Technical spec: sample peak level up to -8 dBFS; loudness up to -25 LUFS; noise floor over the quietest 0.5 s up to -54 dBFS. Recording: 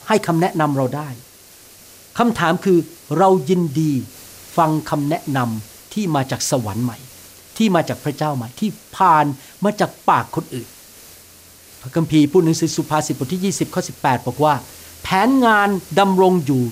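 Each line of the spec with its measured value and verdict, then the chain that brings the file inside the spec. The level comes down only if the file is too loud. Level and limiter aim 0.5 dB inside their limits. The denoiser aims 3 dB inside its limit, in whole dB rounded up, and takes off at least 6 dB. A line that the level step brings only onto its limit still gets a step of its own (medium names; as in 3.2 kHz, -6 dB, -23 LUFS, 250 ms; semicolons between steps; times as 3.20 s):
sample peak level -3.5 dBFS: fail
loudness -18.0 LUFS: fail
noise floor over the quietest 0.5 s -45 dBFS: fail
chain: noise reduction 6 dB, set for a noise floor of -45 dBFS; trim -7.5 dB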